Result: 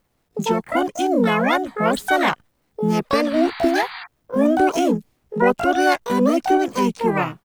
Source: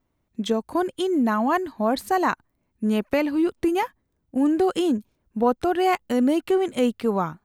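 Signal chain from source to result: bit crusher 12-bit; painted sound noise, 3.30–4.06 s, 870–2400 Hz -38 dBFS; harmony voices -4 st -3 dB, +12 st -1 dB

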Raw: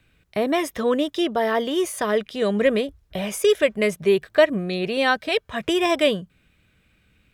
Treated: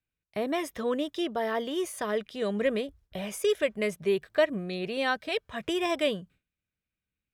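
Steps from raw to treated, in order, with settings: gate with hold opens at -45 dBFS; trim -8 dB

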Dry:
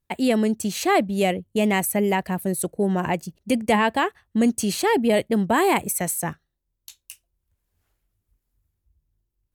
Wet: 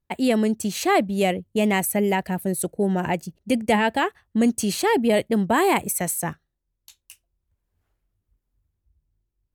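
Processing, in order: 1.77–4.02 s: band-stop 1.1 kHz, Q 7.4; tape noise reduction on one side only decoder only

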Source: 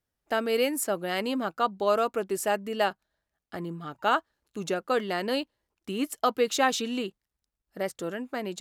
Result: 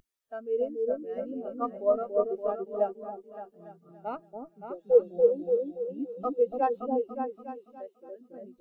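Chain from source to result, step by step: tracing distortion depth 0.3 ms; treble shelf 8.7 kHz -6 dB; Chebyshev shaper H 2 -20 dB, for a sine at -10.5 dBFS; 4.72–5.67 s: spectral replace 1–7.8 kHz before; 4.77–5.94 s: comb 6.2 ms, depth 83%; delay with an opening low-pass 285 ms, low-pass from 750 Hz, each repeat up 2 oct, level 0 dB; word length cut 6-bit, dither triangular; 7.78–8.21 s: high-pass 230 Hz; spectral contrast expander 2.5:1; trim -4 dB

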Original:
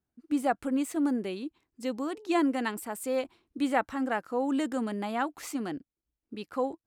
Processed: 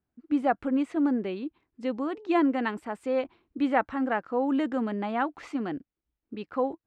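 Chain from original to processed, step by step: low-pass 2.7 kHz 12 dB/octave; trim +2.5 dB

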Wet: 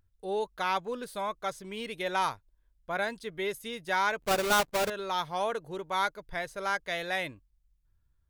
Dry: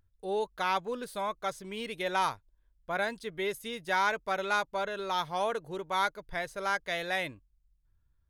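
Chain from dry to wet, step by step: 4.22–4.90 s: square wave that keeps the level

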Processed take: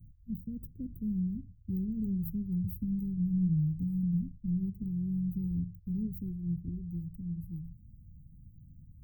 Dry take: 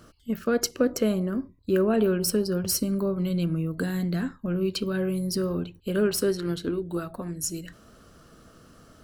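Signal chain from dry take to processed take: inverse Chebyshev band-stop 790–7100 Hz, stop band 80 dB; warped record 45 rpm, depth 100 cents; trim +5.5 dB

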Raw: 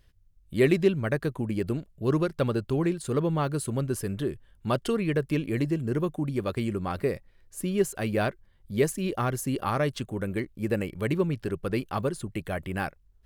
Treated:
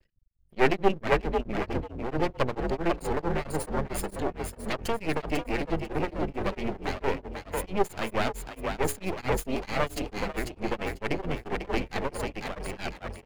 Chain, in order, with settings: comb filter that takes the minimum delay 0.44 ms; hum notches 60/120/180/240/300/360/420 Hz; spectral gate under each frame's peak -30 dB strong; bass shelf 230 Hz -10.5 dB; half-wave rectifier; frequency-shifting echo 496 ms, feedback 41%, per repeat +43 Hz, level -4.5 dB; tremolo of two beating tones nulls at 4.5 Hz; trim +8 dB

